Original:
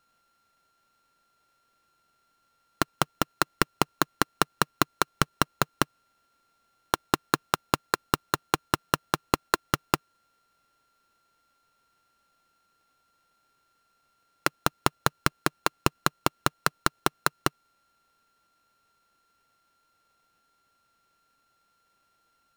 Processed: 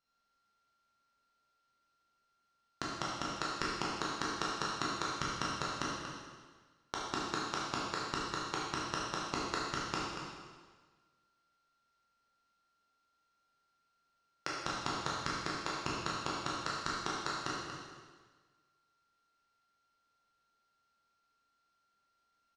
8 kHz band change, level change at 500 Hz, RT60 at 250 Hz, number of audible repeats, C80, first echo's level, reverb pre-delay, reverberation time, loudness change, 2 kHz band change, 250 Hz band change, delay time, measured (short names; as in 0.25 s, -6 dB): -9.5 dB, -10.0 dB, 1.5 s, 1, 0.5 dB, -8.0 dB, 5 ms, 1.5 s, -9.0 dB, -9.5 dB, -9.5 dB, 0.235 s